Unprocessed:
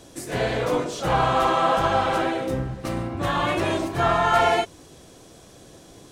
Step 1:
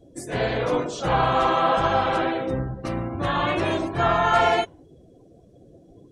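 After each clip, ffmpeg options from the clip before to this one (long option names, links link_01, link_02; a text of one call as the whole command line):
ffmpeg -i in.wav -af "afftdn=noise_reduction=25:noise_floor=-43" out.wav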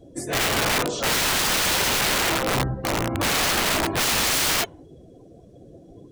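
ffmpeg -i in.wav -af "aeval=exprs='(mod(11.2*val(0)+1,2)-1)/11.2':channel_layout=same,volume=4dB" out.wav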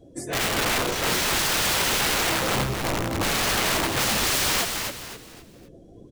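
ffmpeg -i in.wav -filter_complex "[0:a]asplit=5[link_01][link_02][link_03][link_04][link_05];[link_02]adelay=261,afreqshift=-120,volume=-5dB[link_06];[link_03]adelay=522,afreqshift=-240,volume=-14.1dB[link_07];[link_04]adelay=783,afreqshift=-360,volume=-23.2dB[link_08];[link_05]adelay=1044,afreqshift=-480,volume=-32.4dB[link_09];[link_01][link_06][link_07][link_08][link_09]amix=inputs=5:normalize=0,volume=-2.5dB" out.wav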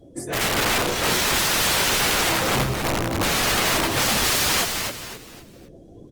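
ffmpeg -i in.wav -af "volume=2.5dB" -ar 48000 -c:a libopus -b:a 24k out.opus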